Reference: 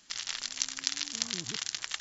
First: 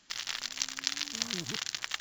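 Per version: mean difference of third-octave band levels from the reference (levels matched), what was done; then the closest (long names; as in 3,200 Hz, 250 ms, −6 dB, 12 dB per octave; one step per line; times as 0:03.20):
4.5 dB: high-shelf EQ 7,000 Hz −11.5 dB
in parallel at −8.5 dB: bit reduction 7 bits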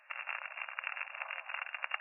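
19.0 dB: brick-wall band-pass 530–2,800 Hz
dynamic equaliser 1,900 Hz, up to −7 dB, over −58 dBFS, Q 3.3
level +6.5 dB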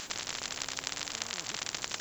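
10.0 dB: high-pass filter 190 Hz 6 dB per octave
every bin compressed towards the loudest bin 10 to 1
level −5.5 dB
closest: first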